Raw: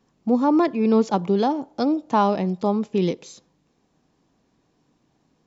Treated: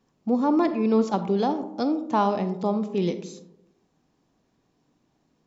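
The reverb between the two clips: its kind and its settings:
comb and all-pass reverb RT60 0.89 s, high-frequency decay 0.3×, pre-delay 5 ms, DRR 10 dB
level −3.5 dB

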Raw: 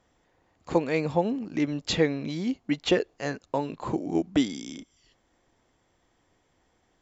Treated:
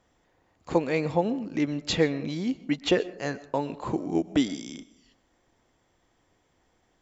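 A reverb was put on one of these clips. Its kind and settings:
comb and all-pass reverb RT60 0.59 s, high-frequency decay 0.35×, pre-delay 85 ms, DRR 17.5 dB

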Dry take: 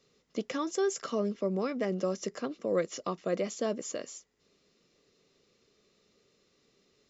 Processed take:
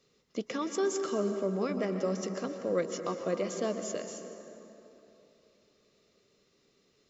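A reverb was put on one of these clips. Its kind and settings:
dense smooth reverb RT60 3.1 s, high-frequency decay 0.5×, pre-delay 110 ms, DRR 6.5 dB
level −1 dB

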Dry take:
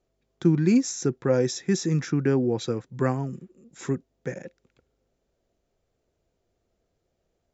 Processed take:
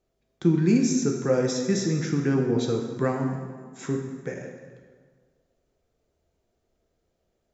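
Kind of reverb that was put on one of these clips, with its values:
dense smooth reverb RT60 1.6 s, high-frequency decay 0.7×, DRR 1.5 dB
level −1.5 dB

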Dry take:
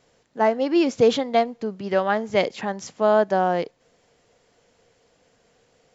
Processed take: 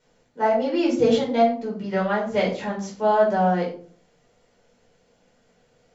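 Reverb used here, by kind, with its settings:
rectangular room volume 340 cubic metres, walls furnished, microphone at 4.7 metres
level −9.5 dB

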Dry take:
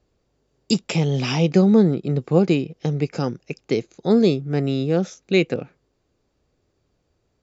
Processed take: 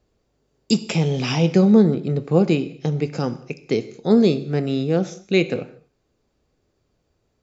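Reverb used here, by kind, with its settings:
reverb whose tail is shaped and stops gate 260 ms falling, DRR 11.5 dB

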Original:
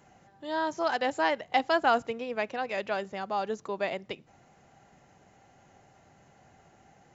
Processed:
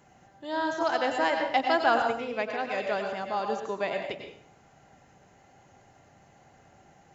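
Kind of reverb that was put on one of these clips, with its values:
dense smooth reverb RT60 0.61 s, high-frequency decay 0.85×, pre-delay 85 ms, DRR 3 dB

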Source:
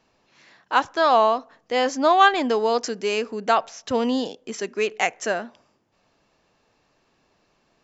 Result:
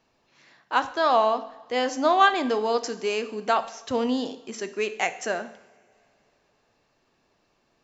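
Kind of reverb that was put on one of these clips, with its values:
coupled-rooms reverb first 0.72 s, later 3.3 s, from −21 dB, DRR 10.5 dB
level −3.5 dB

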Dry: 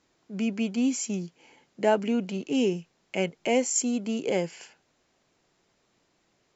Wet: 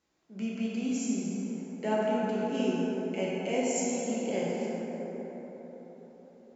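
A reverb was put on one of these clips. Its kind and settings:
dense smooth reverb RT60 4.9 s, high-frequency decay 0.35×, DRR −6.5 dB
level −10.5 dB

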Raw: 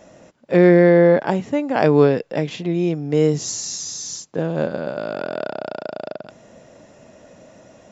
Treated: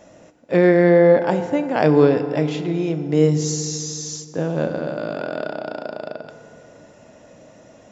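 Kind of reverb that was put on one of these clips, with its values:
feedback delay network reverb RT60 2.7 s, high-frequency decay 0.5×, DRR 9 dB
level −1 dB

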